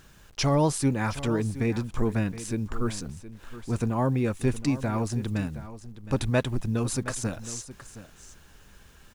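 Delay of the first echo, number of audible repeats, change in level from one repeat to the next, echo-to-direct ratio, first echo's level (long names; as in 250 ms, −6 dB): 718 ms, 1, repeats not evenly spaced, −14.5 dB, −14.5 dB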